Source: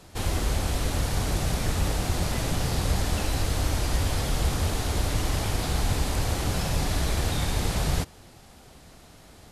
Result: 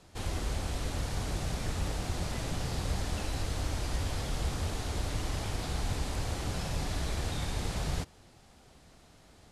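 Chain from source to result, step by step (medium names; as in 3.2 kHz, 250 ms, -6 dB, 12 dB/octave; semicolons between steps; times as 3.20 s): low-pass 10 kHz 12 dB/octave; trim -7.5 dB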